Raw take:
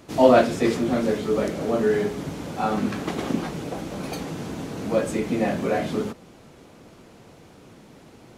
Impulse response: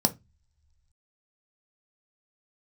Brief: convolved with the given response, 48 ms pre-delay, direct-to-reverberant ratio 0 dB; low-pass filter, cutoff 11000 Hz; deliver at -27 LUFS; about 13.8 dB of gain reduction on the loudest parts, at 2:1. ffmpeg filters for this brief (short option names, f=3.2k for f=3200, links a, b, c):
-filter_complex "[0:a]lowpass=11k,acompressor=threshold=-36dB:ratio=2,asplit=2[a][b];[1:a]atrim=start_sample=2205,adelay=48[c];[b][c]afir=irnorm=-1:irlink=0,volume=-10dB[d];[a][d]amix=inputs=2:normalize=0,volume=-1dB"